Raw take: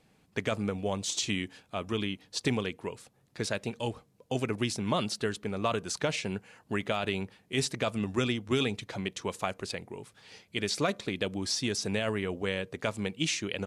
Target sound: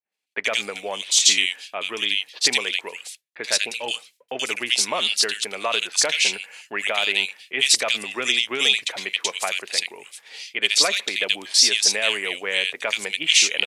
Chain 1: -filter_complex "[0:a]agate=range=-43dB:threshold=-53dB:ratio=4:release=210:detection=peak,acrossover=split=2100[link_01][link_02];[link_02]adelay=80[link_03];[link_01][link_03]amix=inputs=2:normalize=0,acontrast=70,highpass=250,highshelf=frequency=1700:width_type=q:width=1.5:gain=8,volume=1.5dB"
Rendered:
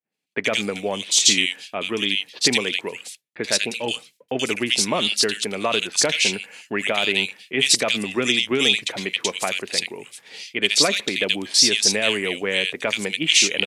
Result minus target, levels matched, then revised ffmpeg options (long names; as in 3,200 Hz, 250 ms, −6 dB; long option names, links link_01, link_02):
250 Hz band +11.5 dB
-filter_complex "[0:a]agate=range=-43dB:threshold=-53dB:ratio=4:release=210:detection=peak,acrossover=split=2100[link_01][link_02];[link_02]adelay=80[link_03];[link_01][link_03]amix=inputs=2:normalize=0,acontrast=70,highpass=620,highshelf=frequency=1700:width_type=q:width=1.5:gain=8,volume=1.5dB"